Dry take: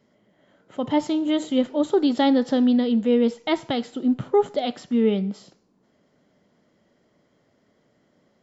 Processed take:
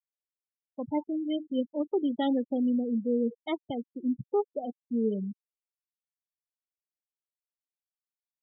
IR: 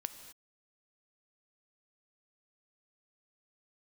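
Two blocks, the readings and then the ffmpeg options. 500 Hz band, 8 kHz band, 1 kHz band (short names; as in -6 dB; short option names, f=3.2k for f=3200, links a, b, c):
-8.5 dB, n/a, -10.0 dB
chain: -af "afftfilt=real='re*gte(hypot(re,im),0.126)':imag='im*gte(hypot(re,im),0.126)':win_size=1024:overlap=0.75,equalizer=f=720:t=o:w=0.77:g=-2,volume=-8dB"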